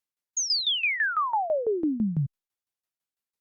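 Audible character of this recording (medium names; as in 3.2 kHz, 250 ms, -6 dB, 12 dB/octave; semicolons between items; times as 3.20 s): tremolo saw down 6 Hz, depth 85%; Opus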